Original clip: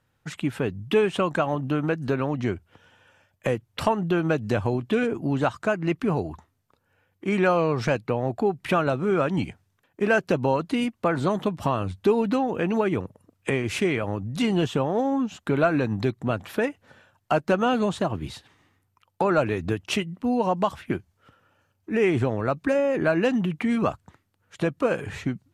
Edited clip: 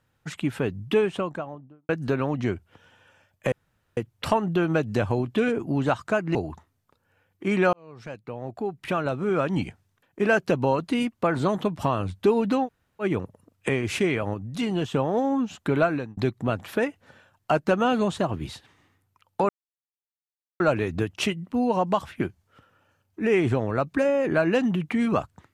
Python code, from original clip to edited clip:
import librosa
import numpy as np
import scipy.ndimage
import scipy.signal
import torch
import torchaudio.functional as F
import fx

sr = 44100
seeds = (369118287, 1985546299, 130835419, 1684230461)

y = fx.studio_fade_out(x, sr, start_s=0.76, length_s=1.13)
y = fx.edit(y, sr, fx.insert_room_tone(at_s=3.52, length_s=0.45),
    fx.cut(start_s=5.9, length_s=0.26),
    fx.fade_in_span(start_s=7.54, length_s=1.93),
    fx.room_tone_fill(start_s=12.47, length_s=0.36, crossfade_s=0.06),
    fx.clip_gain(start_s=14.15, length_s=0.6, db=-3.5),
    fx.fade_out_span(start_s=15.62, length_s=0.36),
    fx.insert_silence(at_s=19.3, length_s=1.11), tone=tone)